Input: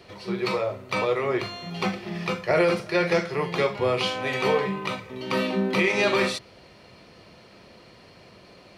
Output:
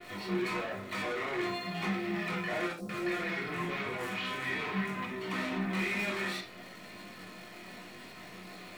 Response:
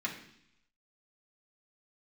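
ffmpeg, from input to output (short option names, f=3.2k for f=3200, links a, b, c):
-filter_complex "[0:a]highpass=f=200:p=1,acrusher=bits=9:dc=4:mix=0:aa=0.000001,flanger=delay=20:depth=2.6:speed=1,asoftclip=type=tanh:threshold=-39dB,asettb=1/sr,asplit=3[a][b][c];[a]atrim=end=2.724[d];[b]atrim=start=2.72:end=5.05,asetpts=PTS-STARTPTS,afade=t=in:d=0.004:c=qsin,afade=t=out:st=2.326:d=0.004:c=qsin,acrossover=split=680|5700[e][f][g];[e]adelay=60[h];[f]adelay=170[i];[h][i][g]amix=inputs=3:normalize=0,atrim=end_sample=102753[j];[c]atrim=start=5.046[k];[d][j]acrossfade=d=0.004:c1=hsin:c2=qsin[l];[l][k]acrossfade=d=0.004:c1=qsin:c2=hsin[m];[1:a]atrim=start_sample=2205,atrim=end_sample=3969[n];[m][n]afir=irnorm=-1:irlink=0,adynamicequalizer=threshold=0.00178:dfrequency=3500:dqfactor=0.7:tfrequency=3500:tqfactor=0.7:attack=5:release=100:ratio=0.375:range=2.5:mode=cutabove:tftype=highshelf,volume=4dB"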